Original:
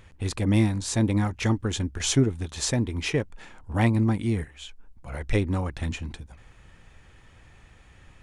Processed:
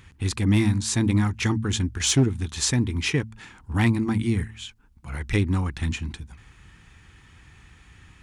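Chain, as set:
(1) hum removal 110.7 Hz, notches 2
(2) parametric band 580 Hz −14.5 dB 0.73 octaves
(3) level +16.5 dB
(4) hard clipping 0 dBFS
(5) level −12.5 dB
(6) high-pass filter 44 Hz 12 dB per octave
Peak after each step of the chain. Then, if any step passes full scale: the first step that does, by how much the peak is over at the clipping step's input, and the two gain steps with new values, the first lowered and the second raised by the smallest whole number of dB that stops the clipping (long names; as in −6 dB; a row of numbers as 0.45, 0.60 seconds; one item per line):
−10.0, −11.5, +5.0, 0.0, −12.5, −9.5 dBFS
step 3, 5.0 dB
step 3 +11.5 dB, step 5 −7.5 dB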